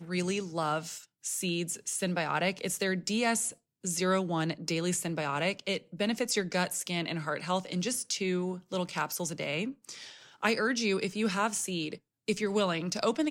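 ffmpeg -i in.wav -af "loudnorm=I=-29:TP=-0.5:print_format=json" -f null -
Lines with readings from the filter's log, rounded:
"input_i" : "-31.2",
"input_tp" : "-14.1",
"input_lra" : "1.9",
"input_thresh" : "-41.3",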